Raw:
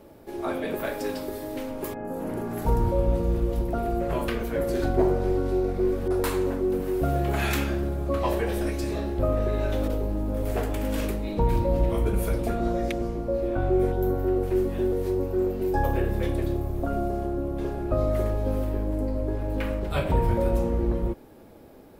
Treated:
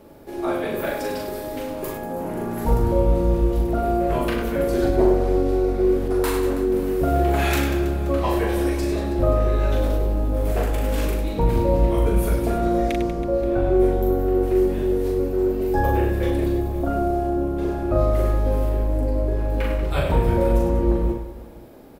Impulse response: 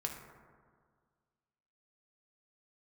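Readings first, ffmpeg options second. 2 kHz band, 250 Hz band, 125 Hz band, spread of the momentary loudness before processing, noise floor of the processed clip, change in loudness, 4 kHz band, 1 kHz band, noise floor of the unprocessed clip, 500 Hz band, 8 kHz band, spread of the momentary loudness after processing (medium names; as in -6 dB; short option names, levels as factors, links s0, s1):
+4.0 dB, +5.0 dB, +4.5 dB, 6 LU, -32 dBFS, +5.0 dB, +4.0 dB, +5.5 dB, -48 dBFS, +5.0 dB, +4.0 dB, 7 LU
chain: -af "aecho=1:1:40|100|190|325|527.5:0.631|0.398|0.251|0.158|0.1,volume=1.26"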